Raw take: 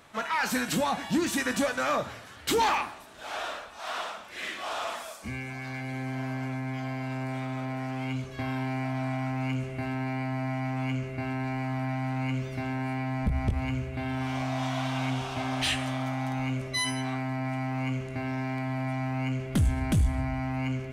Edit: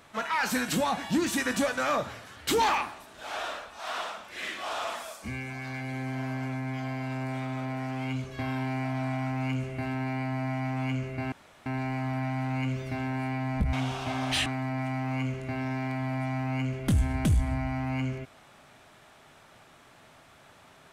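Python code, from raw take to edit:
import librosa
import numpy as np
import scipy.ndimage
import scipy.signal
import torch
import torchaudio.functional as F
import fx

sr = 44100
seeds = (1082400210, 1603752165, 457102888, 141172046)

y = fx.edit(x, sr, fx.insert_room_tone(at_s=11.32, length_s=0.34),
    fx.cut(start_s=13.39, length_s=1.64),
    fx.cut(start_s=15.76, length_s=1.37), tone=tone)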